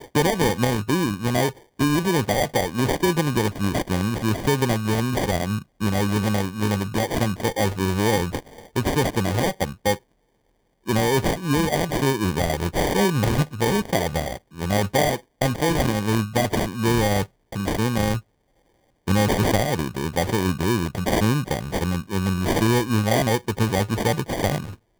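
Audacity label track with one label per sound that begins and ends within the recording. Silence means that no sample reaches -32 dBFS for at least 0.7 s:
10.880000	18.190000	sound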